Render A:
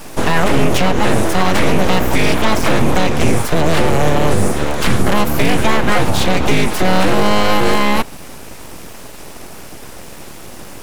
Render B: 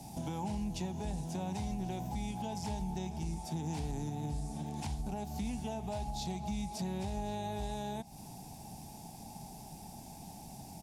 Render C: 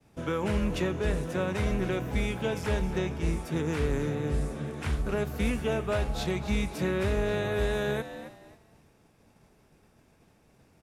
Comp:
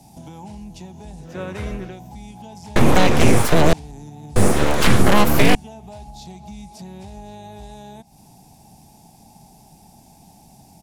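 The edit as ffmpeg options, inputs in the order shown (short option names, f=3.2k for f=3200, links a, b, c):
-filter_complex "[0:a]asplit=2[a][b];[1:a]asplit=4[c][d][e][f];[c]atrim=end=1.42[g];[2:a]atrim=start=1.18:end=1.99[h];[d]atrim=start=1.75:end=2.762[i];[a]atrim=start=2.758:end=3.732[j];[e]atrim=start=3.728:end=4.362[k];[b]atrim=start=4.358:end=5.552[l];[f]atrim=start=5.548[m];[g][h]acrossfade=d=0.24:c1=tri:c2=tri[n];[n][i]acrossfade=d=0.24:c1=tri:c2=tri[o];[o][j]acrossfade=d=0.004:c1=hsin:c2=hsin[p];[p][k]acrossfade=d=0.004:c1=hsin:c2=hsin[q];[q][l]acrossfade=d=0.004:c1=hsin:c2=hsin[r];[r][m]acrossfade=d=0.004:c1=hsin:c2=hsin"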